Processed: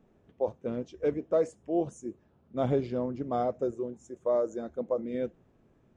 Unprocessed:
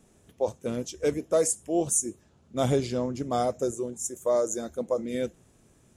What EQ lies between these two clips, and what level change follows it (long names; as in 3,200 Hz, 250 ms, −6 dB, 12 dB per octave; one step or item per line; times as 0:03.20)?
head-to-tape spacing loss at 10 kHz 37 dB
parametric band 67 Hz −5.5 dB 2.7 octaves
0.0 dB